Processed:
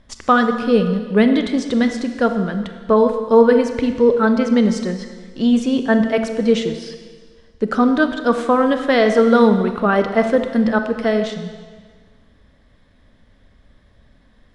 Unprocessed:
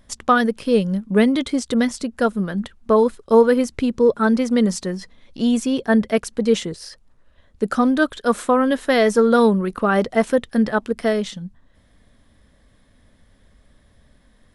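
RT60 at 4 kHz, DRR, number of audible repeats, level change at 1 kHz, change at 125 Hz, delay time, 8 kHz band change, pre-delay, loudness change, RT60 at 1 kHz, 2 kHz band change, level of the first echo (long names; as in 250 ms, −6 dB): 1.6 s, 7.0 dB, no echo audible, +2.5 dB, +2.0 dB, no echo audible, can't be measured, 26 ms, +2.0 dB, 1.7 s, +2.0 dB, no echo audible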